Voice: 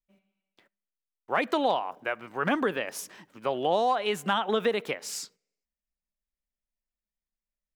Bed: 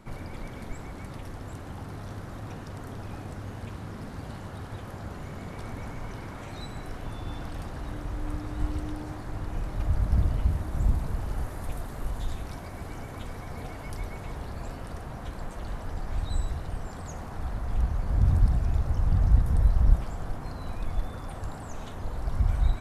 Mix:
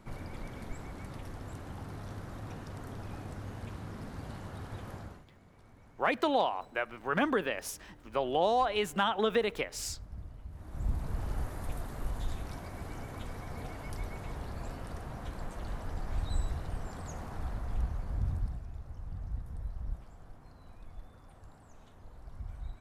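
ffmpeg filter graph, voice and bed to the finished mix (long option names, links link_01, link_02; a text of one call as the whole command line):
ffmpeg -i stem1.wav -i stem2.wav -filter_complex "[0:a]adelay=4700,volume=-2.5dB[link_01];[1:a]volume=13.5dB,afade=type=out:start_time=4.94:duration=0.31:silence=0.141254,afade=type=in:start_time=10.51:duration=0.73:silence=0.133352,afade=type=out:start_time=17.33:duration=1.34:silence=0.188365[link_02];[link_01][link_02]amix=inputs=2:normalize=0" out.wav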